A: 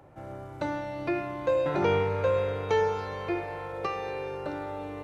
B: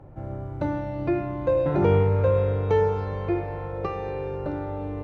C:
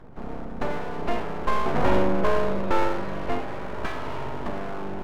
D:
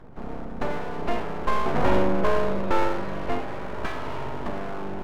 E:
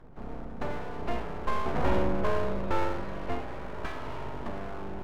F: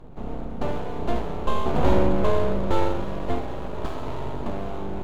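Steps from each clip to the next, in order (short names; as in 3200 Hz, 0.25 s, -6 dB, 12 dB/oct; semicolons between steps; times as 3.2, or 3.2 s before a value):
tilt -3.5 dB/oct
full-wave rectifier; gain +2 dB
nothing audible
octaver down 2 oct, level -2 dB; gain -6 dB
median filter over 25 samples; gain +7.5 dB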